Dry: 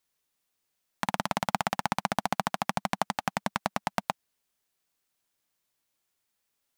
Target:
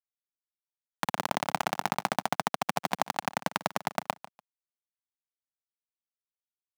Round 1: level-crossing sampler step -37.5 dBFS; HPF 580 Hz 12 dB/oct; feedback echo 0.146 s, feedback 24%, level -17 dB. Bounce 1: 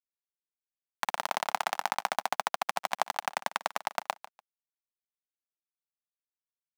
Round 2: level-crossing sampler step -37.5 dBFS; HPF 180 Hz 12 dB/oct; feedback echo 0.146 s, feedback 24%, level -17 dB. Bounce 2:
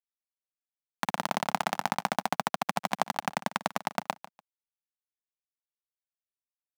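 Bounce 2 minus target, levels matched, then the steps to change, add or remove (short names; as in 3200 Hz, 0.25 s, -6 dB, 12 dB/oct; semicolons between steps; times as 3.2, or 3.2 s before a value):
level-crossing sampler: distortion -12 dB
change: level-crossing sampler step -27 dBFS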